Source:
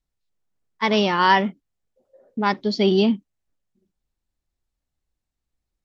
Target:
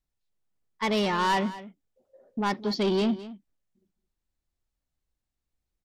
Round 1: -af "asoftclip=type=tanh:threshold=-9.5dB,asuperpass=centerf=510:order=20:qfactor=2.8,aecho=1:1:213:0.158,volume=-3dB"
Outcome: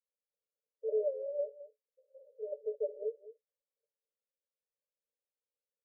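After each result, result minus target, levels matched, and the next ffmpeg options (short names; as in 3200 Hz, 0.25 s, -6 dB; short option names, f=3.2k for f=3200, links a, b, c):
500 Hz band +6.0 dB; soft clip: distortion -9 dB
-af "asoftclip=type=tanh:threshold=-9.5dB,aecho=1:1:213:0.158,volume=-3dB"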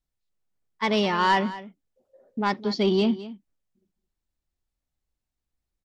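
soft clip: distortion -9 dB
-af "asoftclip=type=tanh:threshold=-17.5dB,aecho=1:1:213:0.158,volume=-3dB"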